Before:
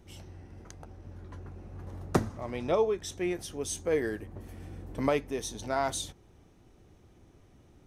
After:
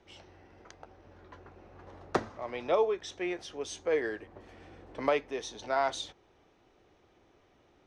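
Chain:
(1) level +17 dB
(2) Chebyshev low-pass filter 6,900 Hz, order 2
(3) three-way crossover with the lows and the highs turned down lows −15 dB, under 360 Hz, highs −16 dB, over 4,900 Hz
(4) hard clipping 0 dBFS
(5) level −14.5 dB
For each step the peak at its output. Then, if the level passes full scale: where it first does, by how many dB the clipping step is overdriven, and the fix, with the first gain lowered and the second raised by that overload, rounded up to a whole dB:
+6.5, +5.5, +4.0, 0.0, −14.5 dBFS
step 1, 4.0 dB
step 1 +13 dB, step 5 −10.5 dB

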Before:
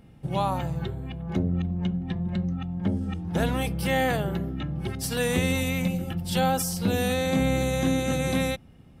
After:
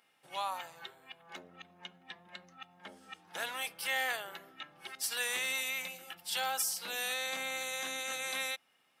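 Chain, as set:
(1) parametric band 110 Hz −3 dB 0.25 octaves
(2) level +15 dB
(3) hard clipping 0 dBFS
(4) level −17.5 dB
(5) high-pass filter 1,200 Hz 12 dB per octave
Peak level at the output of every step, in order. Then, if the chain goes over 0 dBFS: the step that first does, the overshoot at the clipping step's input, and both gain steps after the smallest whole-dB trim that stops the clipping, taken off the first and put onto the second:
−12.0, +3.0, 0.0, −17.5, −18.5 dBFS
step 2, 3.0 dB
step 2 +12 dB, step 4 −14.5 dB

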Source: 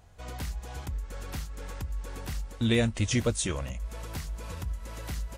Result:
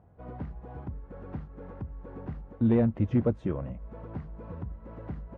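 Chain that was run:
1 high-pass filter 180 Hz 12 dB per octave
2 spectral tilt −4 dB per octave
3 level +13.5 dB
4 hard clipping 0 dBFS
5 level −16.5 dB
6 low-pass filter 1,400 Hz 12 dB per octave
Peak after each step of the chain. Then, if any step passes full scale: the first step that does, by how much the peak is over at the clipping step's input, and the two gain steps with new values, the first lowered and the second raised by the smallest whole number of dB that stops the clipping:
−12.0, −9.5, +4.0, 0.0, −16.5, −16.0 dBFS
step 3, 4.0 dB
step 3 +9.5 dB, step 5 −12.5 dB

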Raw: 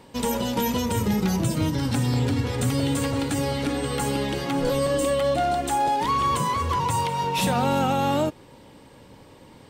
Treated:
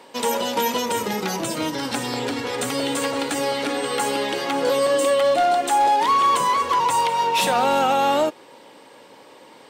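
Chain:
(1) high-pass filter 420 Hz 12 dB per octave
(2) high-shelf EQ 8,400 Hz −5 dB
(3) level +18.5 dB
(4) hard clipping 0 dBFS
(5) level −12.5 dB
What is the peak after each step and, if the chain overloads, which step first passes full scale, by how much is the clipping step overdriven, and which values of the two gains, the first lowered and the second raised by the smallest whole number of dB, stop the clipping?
−13.5, −14.0, +4.5, 0.0, −12.5 dBFS
step 3, 4.5 dB
step 3 +13.5 dB, step 5 −7.5 dB

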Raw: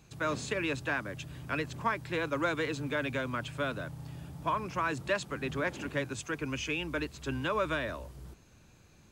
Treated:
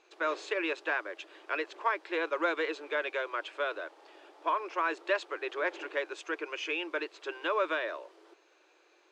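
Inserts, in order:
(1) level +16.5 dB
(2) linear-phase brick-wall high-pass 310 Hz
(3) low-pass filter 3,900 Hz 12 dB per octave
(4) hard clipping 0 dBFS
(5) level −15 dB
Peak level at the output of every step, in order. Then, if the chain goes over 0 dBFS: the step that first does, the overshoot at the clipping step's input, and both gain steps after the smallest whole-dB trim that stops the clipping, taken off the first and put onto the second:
−1.5, −2.5, −2.5, −2.5, −17.5 dBFS
no step passes full scale

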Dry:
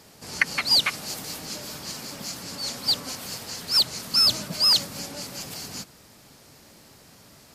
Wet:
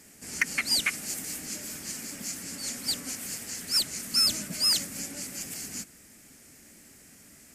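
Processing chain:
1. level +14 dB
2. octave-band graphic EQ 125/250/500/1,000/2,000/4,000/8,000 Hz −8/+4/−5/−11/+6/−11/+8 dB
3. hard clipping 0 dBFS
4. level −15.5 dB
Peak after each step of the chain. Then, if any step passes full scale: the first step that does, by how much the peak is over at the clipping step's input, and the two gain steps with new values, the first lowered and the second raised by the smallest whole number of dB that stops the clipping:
+9.0, +10.0, 0.0, −15.5 dBFS
step 1, 10.0 dB
step 1 +4 dB, step 4 −5.5 dB

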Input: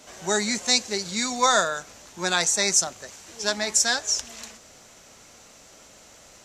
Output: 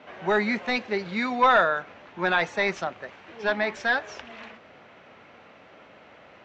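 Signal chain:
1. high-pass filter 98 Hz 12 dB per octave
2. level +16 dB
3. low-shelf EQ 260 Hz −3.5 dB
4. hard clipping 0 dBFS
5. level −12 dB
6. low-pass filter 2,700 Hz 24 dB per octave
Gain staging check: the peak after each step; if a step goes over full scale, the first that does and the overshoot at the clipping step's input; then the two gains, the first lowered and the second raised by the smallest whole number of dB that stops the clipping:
−6.0, +10.0, +10.0, 0.0, −12.0, −10.5 dBFS
step 2, 10.0 dB
step 2 +6 dB, step 5 −2 dB

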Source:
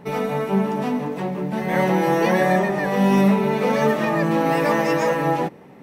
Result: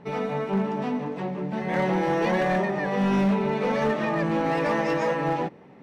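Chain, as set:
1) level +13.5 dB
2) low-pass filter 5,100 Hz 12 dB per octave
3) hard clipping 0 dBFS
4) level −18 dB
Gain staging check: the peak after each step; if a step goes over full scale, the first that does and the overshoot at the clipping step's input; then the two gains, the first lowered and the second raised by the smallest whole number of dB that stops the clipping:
+8.0, +8.0, 0.0, −18.0 dBFS
step 1, 8.0 dB
step 1 +5.5 dB, step 4 −10 dB

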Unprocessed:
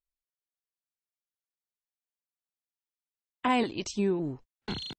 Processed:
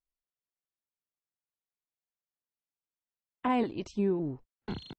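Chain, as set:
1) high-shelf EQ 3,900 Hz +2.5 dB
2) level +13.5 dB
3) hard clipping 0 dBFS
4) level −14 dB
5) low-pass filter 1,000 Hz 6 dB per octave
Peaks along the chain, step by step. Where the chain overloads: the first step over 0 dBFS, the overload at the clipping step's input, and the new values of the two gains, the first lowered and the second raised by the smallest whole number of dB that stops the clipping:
−15.0, −1.5, −1.5, −15.5, −17.0 dBFS
no step passes full scale

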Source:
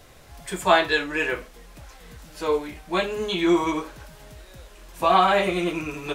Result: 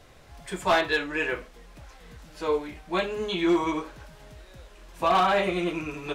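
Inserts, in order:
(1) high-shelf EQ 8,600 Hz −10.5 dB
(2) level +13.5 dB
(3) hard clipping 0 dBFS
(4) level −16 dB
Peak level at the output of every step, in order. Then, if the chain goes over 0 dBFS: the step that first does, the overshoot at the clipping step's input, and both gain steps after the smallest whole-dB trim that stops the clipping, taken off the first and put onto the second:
−4.5, +9.0, 0.0, −16.0 dBFS
step 2, 9.0 dB
step 2 +4.5 dB, step 4 −7 dB

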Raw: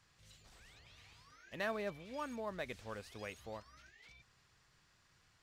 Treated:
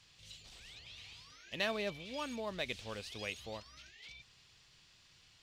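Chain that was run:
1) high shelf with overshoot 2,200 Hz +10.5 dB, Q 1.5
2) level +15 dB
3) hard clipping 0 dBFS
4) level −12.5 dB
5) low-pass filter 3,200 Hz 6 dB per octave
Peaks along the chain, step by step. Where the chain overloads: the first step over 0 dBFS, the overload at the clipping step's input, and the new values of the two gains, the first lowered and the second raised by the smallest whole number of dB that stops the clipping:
−21.0, −6.0, −6.0, −18.5, −21.0 dBFS
no step passes full scale

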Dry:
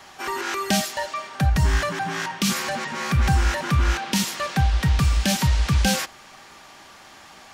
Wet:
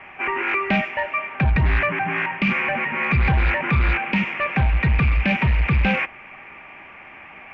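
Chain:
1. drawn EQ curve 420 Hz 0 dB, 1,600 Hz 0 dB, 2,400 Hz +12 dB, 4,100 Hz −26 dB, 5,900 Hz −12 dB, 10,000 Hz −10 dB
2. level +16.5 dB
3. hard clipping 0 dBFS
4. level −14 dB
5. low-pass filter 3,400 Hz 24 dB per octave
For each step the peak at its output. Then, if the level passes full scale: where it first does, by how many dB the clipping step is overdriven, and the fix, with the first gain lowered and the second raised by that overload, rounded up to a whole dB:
−7.5, +9.0, 0.0, −14.0, −12.0 dBFS
step 2, 9.0 dB
step 2 +7.5 dB, step 4 −5 dB

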